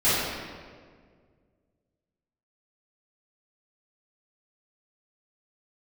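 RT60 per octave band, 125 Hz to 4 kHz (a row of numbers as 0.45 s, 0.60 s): 2.5 s, 2.2 s, 2.1 s, 1.6 s, 1.4 s, 1.2 s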